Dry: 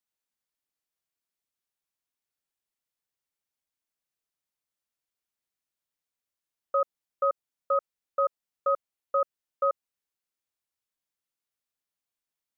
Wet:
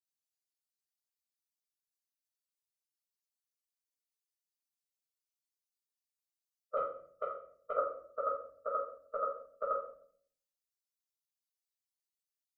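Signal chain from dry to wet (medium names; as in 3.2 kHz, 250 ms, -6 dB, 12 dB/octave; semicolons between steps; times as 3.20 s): expander on every frequency bin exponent 2; 6.77–7.77 s: compression, threshold -36 dBFS, peak gain reduction 13.5 dB; harmonic-percussive split harmonic -16 dB; simulated room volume 75 m³, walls mixed, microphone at 1.6 m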